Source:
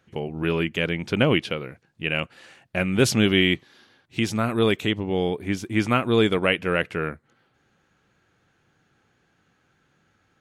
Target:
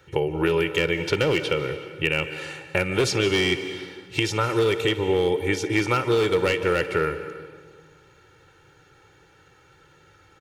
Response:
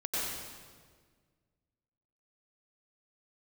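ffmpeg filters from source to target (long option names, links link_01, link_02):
-filter_complex "[0:a]aecho=1:1:2.2:0.89,asoftclip=type=hard:threshold=-13dB,acrossover=split=270|7600[link_01][link_02][link_03];[link_01]acompressor=threshold=-39dB:ratio=4[link_04];[link_02]acompressor=threshold=-30dB:ratio=4[link_05];[link_03]acompressor=threshold=-58dB:ratio=4[link_06];[link_04][link_05][link_06]amix=inputs=3:normalize=0,asplit=2[link_07][link_08];[link_08]highpass=150[link_09];[1:a]atrim=start_sample=2205,adelay=56[link_10];[link_09][link_10]afir=irnorm=-1:irlink=0,volume=-16dB[link_11];[link_07][link_11]amix=inputs=2:normalize=0,volume=8dB"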